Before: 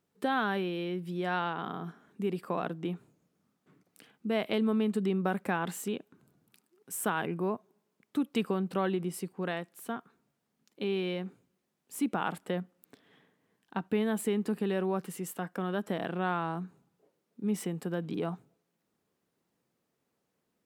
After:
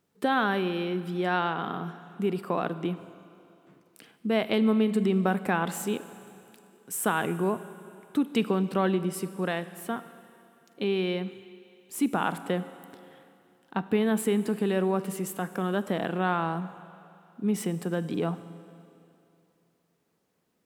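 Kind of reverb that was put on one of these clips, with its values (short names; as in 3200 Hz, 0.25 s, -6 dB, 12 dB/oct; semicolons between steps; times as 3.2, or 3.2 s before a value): Schroeder reverb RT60 2.7 s, combs from 32 ms, DRR 13.5 dB; gain +4.5 dB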